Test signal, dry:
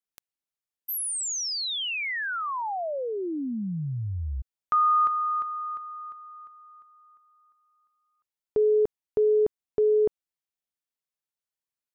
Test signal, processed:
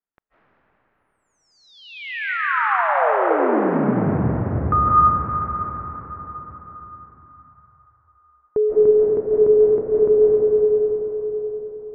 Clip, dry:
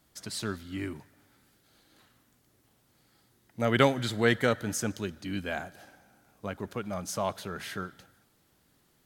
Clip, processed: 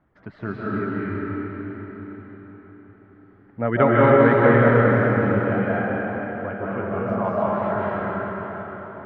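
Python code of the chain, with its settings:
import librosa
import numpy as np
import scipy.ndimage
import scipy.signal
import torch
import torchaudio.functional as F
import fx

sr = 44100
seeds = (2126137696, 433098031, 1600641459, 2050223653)

y = scipy.signal.sosfilt(scipy.signal.butter(4, 1800.0, 'lowpass', fs=sr, output='sos'), x)
y = fx.dereverb_blind(y, sr, rt60_s=1.9)
y = fx.rev_freeverb(y, sr, rt60_s=5.0, hf_ratio=0.75, predelay_ms=120, drr_db=-8.5)
y = F.gain(torch.from_numpy(y), 4.0).numpy()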